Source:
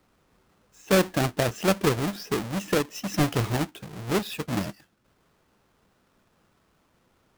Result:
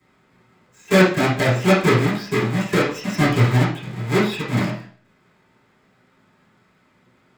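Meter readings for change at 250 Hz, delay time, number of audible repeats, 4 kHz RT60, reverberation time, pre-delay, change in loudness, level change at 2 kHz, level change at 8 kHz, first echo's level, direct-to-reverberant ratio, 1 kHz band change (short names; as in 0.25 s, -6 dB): +7.5 dB, none, none, 0.40 s, 0.50 s, 3 ms, +7.5 dB, +10.0 dB, +0.5 dB, none, -14.5 dB, +7.0 dB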